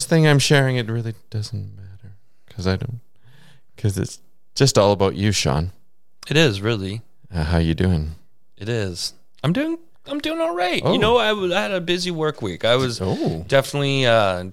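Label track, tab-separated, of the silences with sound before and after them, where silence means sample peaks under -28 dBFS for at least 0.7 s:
1.670000	2.510000	silence
2.960000	3.780000	silence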